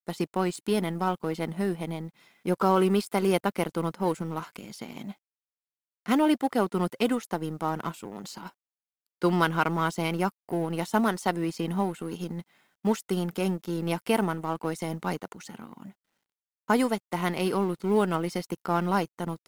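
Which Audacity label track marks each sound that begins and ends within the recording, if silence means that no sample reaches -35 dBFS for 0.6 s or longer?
6.060000	8.480000	sound
9.220000	15.870000	sound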